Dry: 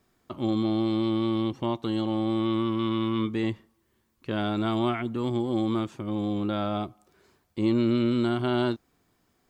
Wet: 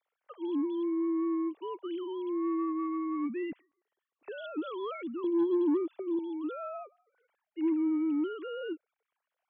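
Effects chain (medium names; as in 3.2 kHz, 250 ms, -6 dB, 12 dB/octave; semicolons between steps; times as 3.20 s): formants replaced by sine waves; 5.24–6.19 s: resonant low shelf 790 Hz +6.5 dB, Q 3; saturation -15 dBFS, distortion -21 dB; trim -6 dB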